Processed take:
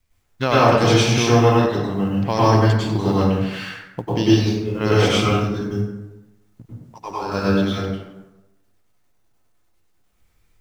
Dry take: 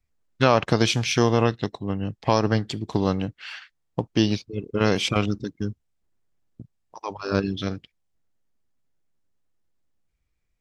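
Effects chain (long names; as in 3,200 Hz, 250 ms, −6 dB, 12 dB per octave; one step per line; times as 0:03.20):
mu-law and A-law mismatch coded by mu
dense smooth reverb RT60 1 s, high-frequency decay 0.55×, pre-delay 85 ms, DRR −8 dB
level −3.5 dB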